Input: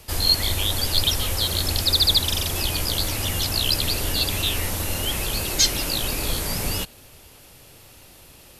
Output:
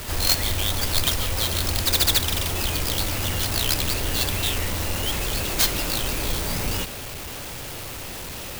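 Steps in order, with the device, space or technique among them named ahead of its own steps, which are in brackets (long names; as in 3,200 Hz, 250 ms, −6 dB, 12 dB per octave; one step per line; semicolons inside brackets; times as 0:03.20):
early CD player with a faulty converter (converter with a step at zero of −26 dBFS; converter with an unsteady clock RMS 0.037 ms)
level −2.5 dB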